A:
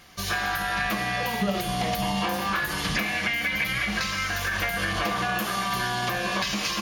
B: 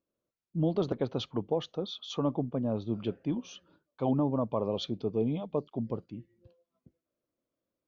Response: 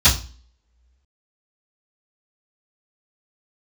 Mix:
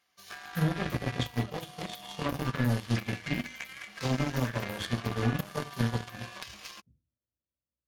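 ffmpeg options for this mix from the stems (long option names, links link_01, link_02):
-filter_complex "[0:a]highpass=frequency=530:poles=1,volume=-3.5dB[link_01];[1:a]volume=-9.5dB,asplit=2[link_02][link_03];[link_03]volume=-6.5dB[link_04];[2:a]atrim=start_sample=2205[link_05];[link_04][link_05]afir=irnorm=-1:irlink=0[link_06];[link_01][link_02][link_06]amix=inputs=3:normalize=0,aeval=exprs='0.422*(cos(1*acos(clip(val(0)/0.422,-1,1)))-cos(1*PI/2))+0.0531*(cos(7*acos(clip(val(0)/0.422,-1,1)))-cos(7*PI/2))':channel_layout=same,acompressor=threshold=-30dB:ratio=2"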